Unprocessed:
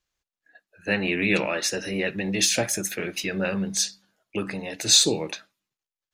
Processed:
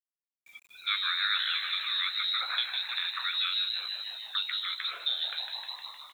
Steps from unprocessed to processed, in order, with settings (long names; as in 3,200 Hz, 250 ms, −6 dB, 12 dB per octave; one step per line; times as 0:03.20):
echo with shifted repeats 154 ms, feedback 61%, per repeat −110 Hz, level −8.5 dB
in parallel at −6 dB: asymmetric clip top −16 dBFS
on the sum: voice inversion scrambler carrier 4,000 Hz
downward compressor 2 to 1, threshold −34 dBFS, peak gain reduction 11 dB
high-pass filter 1,000 Hz 24 dB per octave
bit reduction 10 bits